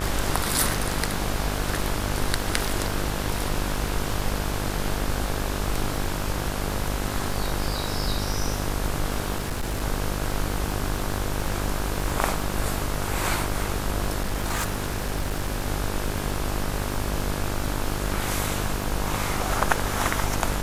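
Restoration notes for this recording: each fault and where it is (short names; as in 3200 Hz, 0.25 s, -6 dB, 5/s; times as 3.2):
buzz 50 Hz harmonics 34 -30 dBFS
crackle 28/s -28 dBFS
9.38–9.82 clipped -23.5 dBFS
14.21–15.66 clipped -21.5 dBFS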